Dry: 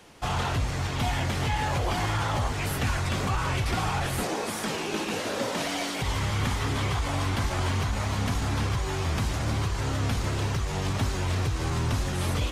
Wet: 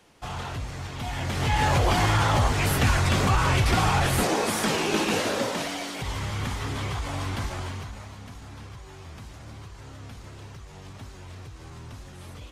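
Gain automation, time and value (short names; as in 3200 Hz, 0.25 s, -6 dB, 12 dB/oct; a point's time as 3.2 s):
1.03 s -6 dB
1.63 s +5.5 dB
5.18 s +5.5 dB
5.81 s -3 dB
7.44 s -3 dB
8.19 s -15 dB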